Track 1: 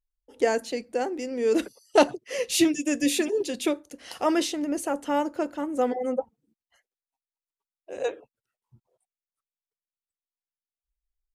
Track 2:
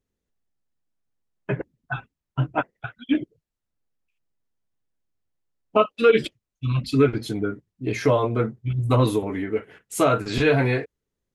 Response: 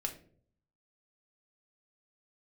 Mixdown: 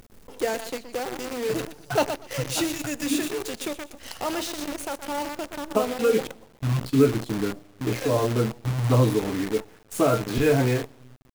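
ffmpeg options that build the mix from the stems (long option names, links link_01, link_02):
-filter_complex "[0:a]asubboost=boost=9.5:cutoff=100,volume=-5dB,asplit=4[link_01][link_02][link_03][link_04];[link_02]volume=-12dB[link_05];[link_03]volume=-7.5dB[link_06];[1:a]tiltshelf=frequency=1100:gain=4.5,volume=-6.5dB,asplit=2[link_07][link_08];[link_08]volume=-9dB[link_09];[link_04]apad=whole_len=500525[link_10];[link_07][link_10]sidechaincompress=threshold=-39dB:ratio=6:attack=9.1:release=109[link_11];[2:a]atrim=start_sample=2205[link_12];[link_05][link_09]amix=inputs=2:normalize=0[link_13];[link_13][link_12]afir=irnorm=-1:irlink=0[link_14];[link_06]aecho=0:1:121|242|363|484:1|0.25|0.0625|0.0156[link_15];[link_01][link_11][link_14][link_15]amix=inputs=4:normalize=0,acompressor=mode=upward:threshold=-28dB:ratio=2.5,acrusher=bits=6:dc=4:mix=0:aa=0.000001"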